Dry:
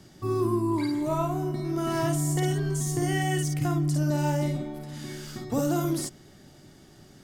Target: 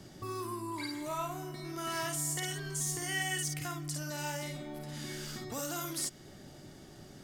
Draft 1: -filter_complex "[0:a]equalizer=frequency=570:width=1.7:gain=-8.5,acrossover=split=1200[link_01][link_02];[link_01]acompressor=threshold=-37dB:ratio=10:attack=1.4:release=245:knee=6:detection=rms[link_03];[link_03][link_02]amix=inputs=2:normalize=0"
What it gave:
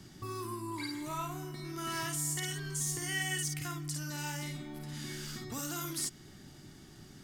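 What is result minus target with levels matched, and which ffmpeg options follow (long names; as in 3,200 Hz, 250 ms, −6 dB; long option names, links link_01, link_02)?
500 Hz band −4.0 dB
-filter_complex "[0:a]equalizer=frequency=570:width=1.7:gain=3,acrossover=split=1200[link_01][link_02];[link_01]acompressor=threshold=-37dB:ratio=10:attack=1.4:release=245:knee=6:detection=rms[link_03];[link_03][link_02]amix=inputs=2:normalize=0"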